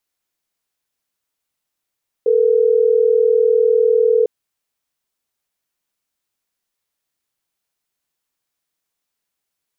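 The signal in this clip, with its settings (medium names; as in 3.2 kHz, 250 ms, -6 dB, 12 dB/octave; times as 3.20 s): call progress tone ringback tone, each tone -13.5 dBFS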